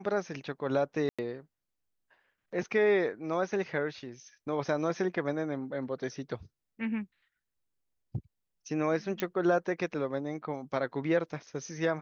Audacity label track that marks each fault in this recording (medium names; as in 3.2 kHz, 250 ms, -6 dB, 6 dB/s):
1.090000	1.190000	dropout 96 ms
9.200000	9.200000	pop -15 dBFS